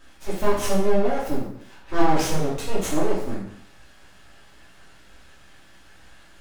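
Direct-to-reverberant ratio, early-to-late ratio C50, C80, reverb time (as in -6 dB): -7.0 dB, 3.0 dB, 7.0 dB, 0.70 s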